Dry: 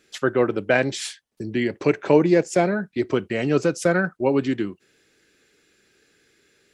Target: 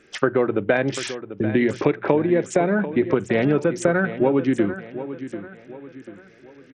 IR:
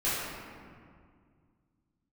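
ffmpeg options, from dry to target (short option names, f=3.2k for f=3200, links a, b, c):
-filter_complex "[0:a]lowpass=7.6k,equalizer=f=4.2k:w=1.8:g=-15,bandreject=f=60:t=h:w=6,bandreject=f=120:t=h:w=6,bandreject=f=180:t=h:w=6,acompressor=threshold=-24dB:ratio=10,asplit=2[a][b];[b]aecho=0:1:741|1482|2223|2964:0.237|0.0949|0.0379|0.0152[c];[a][c]amix=inputs=2:normalize=0,volume=9dB" -ar 48000 -c:a sbc -b:a 64k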